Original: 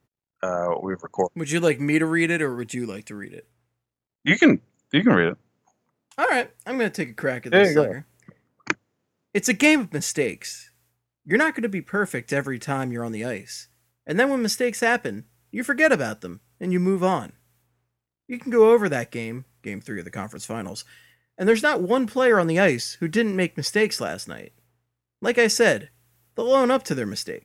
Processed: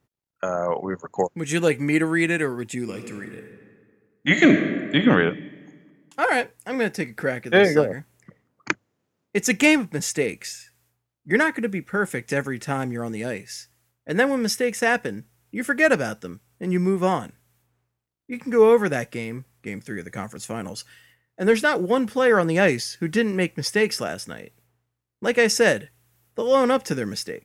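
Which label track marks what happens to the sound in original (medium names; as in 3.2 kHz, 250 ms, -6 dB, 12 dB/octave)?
2.800000	5.050000	reverb throw, RT60 1.8 s, DRR 5 dB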